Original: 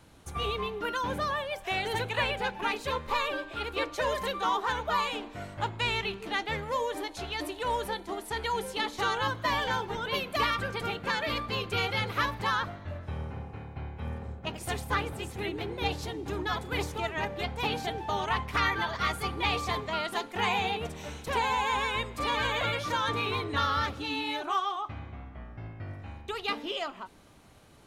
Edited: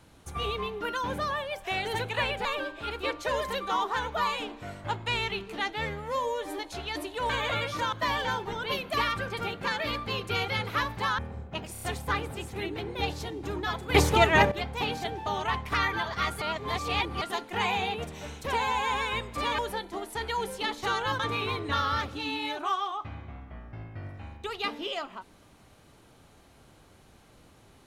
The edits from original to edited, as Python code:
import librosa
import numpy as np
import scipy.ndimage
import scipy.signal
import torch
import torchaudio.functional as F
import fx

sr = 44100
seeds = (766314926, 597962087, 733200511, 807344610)

y = fx.edit(x, sr, fx.cut(start_s=2.45, length_s=0.73),
    fx.stretch_span(start_s=6.46, length_s=0.57, factor=1.5),
    fx.swap(start_s=7.74, length_s=1.61, other_s=22.41, other_length_s=0.63),
    fx.cut(start_s=12.61, length_s=1.49),
    fx.stutter(start_s=14.64, slice_s=0.03, count=4),
    fx.clip_gain(start_s=16.77, length_s=0.57, db=12.0),
    fx.reverse_span(start_s=19.24, length_s=0.8), tone=tone)